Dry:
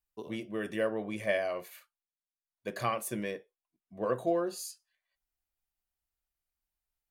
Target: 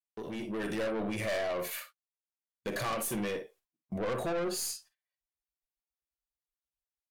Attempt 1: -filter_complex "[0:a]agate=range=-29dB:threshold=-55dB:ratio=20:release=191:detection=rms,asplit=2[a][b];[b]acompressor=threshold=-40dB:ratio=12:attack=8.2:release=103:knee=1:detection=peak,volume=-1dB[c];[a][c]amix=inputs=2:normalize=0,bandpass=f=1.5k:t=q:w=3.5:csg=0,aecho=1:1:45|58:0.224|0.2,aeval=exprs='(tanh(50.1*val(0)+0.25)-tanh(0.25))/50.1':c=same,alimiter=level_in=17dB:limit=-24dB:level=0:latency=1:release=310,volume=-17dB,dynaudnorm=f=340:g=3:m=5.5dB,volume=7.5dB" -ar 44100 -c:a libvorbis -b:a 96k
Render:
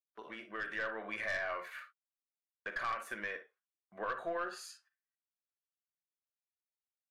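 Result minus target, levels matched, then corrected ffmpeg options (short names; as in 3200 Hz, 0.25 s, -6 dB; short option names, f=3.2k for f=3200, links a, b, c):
2000 Hz band +7.5 dB
-filter_complex "[0:a]agate=range=-29dB:threshold=-55dB:ratio=20:release=191:detection=rms,asplit=2[a][b];[b]acompressor=threshold=-40dB:ratio=12:attack=8.2:release=103:knee=1:detection=peak,volume=-1dB[c];[a][c]amix=inputs=2:normalize=0,aecho=1:1:45|58:0.224|0.2,aeval=exprs='(tanh(50.1*val(0)+0.25)-tanh(0.25))/50.1':c=same,alimiter=level_in=17dB:limit=-24dB:level=0:latency=1:release=310,volume=-17dB,dynaudnorm=f=340:g=3:m=5.5dB,volume=7.5dB" -ar 44100 -c:a libvorbis -b:a 96k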